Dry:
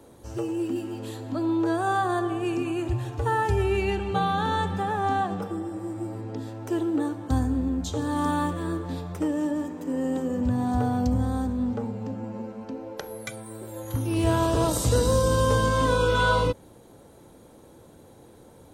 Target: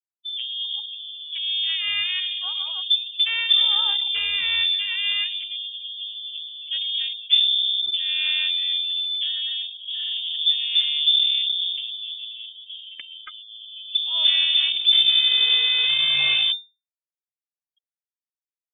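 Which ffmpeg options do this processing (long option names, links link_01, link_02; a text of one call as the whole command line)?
ffmpeg -i in.wav -af "afftfilt=real='re*gte(hypot(re,im),0.0316)':imag='im*gte(hypot(re,im),0.0316)':win_size=1024:overlap=0.75,aeval=exprs='0.299*(cos(1*acos(clip(val(0)/0.299,-1,1)))-cos(1*PI/2))+0.00266*(cos(3*acos(clip(val(0)/0.299,-1,1)))-cos(3*PI/2))+0.0266*(cos(6*acos(clip(val(0)/0.299,-1,1)))-cos(6*PI/2))':channel_layout=same,lowshelf=frequency=110:width_type=q:width=3:gain=7,lowpass=frequency=3100:width_type=q:width=0.5098,lowpass=frequency=3100:width_type=q:width=0.6013,lowpass=frequency=3100:width_type=q:width=0.9,lowpass=frequency=3100:width_type=q:width=2.563,afreqshift=-3600,volume=-1.5dB" out.wav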